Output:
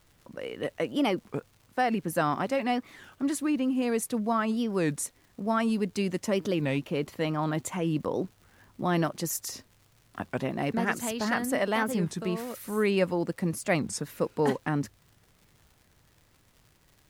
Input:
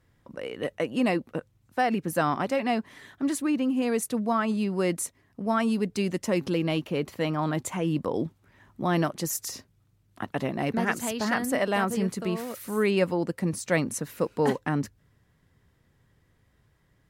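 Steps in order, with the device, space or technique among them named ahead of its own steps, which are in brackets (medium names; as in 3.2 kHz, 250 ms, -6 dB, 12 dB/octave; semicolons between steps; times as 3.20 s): warped LP (warped record 33 1/3 rpm, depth 250 cents; crackle 140 per s -46 dBFS; pink noise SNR 37 dB); trim -1.5 dB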